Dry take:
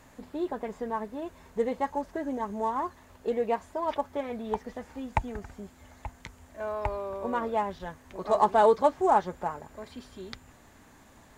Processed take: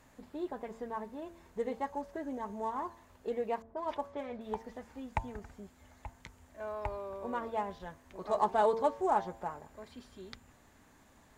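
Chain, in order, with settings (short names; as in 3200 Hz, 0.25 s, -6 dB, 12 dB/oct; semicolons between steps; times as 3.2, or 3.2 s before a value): 3.62–4.41 low-pass opened by the level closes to 680 Hz, open at -26 dBFS; de-hum 112.9 Hz, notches 10; gain -6.5 dB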